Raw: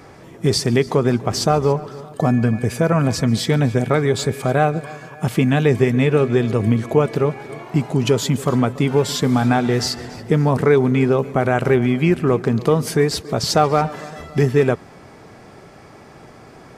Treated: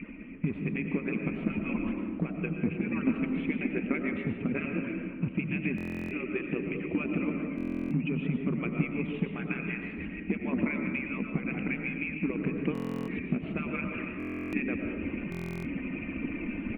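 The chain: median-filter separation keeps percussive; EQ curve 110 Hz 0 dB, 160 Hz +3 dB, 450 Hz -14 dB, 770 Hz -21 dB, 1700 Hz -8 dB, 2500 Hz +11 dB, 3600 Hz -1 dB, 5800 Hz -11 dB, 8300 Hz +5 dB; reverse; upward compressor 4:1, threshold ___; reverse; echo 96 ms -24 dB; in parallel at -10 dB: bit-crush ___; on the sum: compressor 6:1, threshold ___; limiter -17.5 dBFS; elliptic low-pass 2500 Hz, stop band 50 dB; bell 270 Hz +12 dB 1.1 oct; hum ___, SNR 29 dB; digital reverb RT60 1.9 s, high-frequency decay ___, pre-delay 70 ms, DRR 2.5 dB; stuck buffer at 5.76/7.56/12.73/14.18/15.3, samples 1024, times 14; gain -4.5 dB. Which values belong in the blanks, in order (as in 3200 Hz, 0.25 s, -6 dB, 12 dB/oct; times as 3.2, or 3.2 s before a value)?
-27 dBFS, 4-bit, -27 dBFS, 60 Hz, 0.25×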